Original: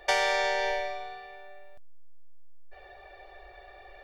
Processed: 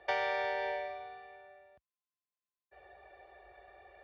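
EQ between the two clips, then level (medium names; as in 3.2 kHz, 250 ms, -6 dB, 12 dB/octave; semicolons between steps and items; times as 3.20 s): high-pass 59 Hz 24 dB/octave; distance through air 300 m; -5.0 dB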